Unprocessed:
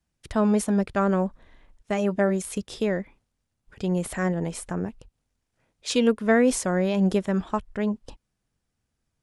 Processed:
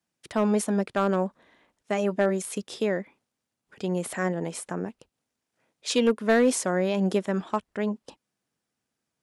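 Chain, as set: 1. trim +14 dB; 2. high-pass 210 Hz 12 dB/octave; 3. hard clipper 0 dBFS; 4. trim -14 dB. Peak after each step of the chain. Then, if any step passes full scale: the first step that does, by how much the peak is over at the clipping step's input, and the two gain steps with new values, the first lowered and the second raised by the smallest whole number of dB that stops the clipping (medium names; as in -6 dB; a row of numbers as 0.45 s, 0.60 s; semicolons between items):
+6.0 dBFS, +5.0 dBFS, 0.0 dBFS, -14.0 dBFS; step 1, 5.0 dB; step 1 +9 dB, step 4 -9 dB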